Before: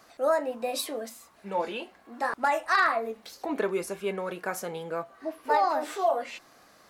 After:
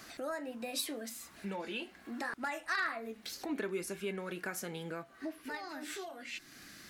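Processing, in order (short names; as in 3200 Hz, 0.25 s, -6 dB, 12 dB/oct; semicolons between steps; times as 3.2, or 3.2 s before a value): compressor 2:1, threshold -49 dBFS, peak gain reduction 16 dB; band shelf 730 Hz -8.5 dB, from 5.42 s -15.5 dB; gain +7.5 dB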